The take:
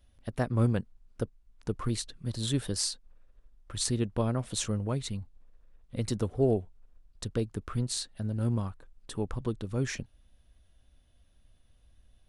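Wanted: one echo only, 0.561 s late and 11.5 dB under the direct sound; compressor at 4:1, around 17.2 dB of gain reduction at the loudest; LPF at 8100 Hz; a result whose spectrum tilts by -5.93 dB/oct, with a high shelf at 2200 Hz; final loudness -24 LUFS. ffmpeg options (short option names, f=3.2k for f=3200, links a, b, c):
-af "lowpass=8.1k,highshelf=f=2.2k:g=-9,acompressor=threshold=-42dB:ratio=4,aecho=1:1:561:0.266,volume=22.5dB"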